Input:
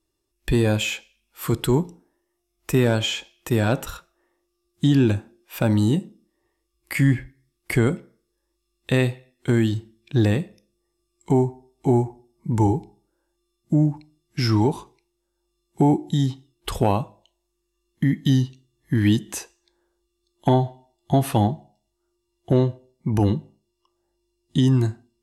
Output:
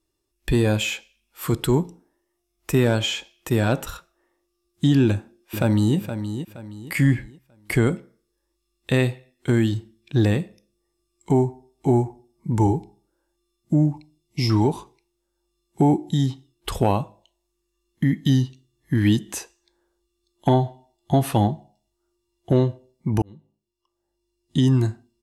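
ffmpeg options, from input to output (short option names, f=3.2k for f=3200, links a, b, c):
-filter_complex "[0:a]asplit=2[a][b];[b]afade=t=in:st=5.06:d=0.01,afade=t=out:st=5.97:d=0.01,aecho=0:1:470|940|1410|1880:0.334965|0.117238|0.0410333|0.0143616[c];[a][c]amix=inputs=2:normalize=0,asettb=1/sr,asplit=3[d][e][f];[d]atrim=end=13.934[g];[e]atrim=start=13.93:end=14.5,asetpts=PTS-STARTPTS,afade=t=in:d=0.004:c=qsin,afade=t=out:st=0.566:d=0.004:c=qsin,asuperstop=centerf=1500:order=8:qfactor=1.7[h];[f]atrim=start=14.496[i];[g][h]acrossfade=d=0.004:c1=hsin:c2=qsin[j];[j][i]acrossfade=d=0.004:c1=qsin:c2=hsin,asplit=2[k][l];[k]atrim=end=23.22,asetpts=PTS-STARTPTS,afade=t=out:st=23.216:d=0.004:c=hsin[m];[l]atrim=start=23.22,asetpts=PTS-STARTPTS,afade=t=in:d=1.42[n];[m][n]concat=n=2:v=0:a=1"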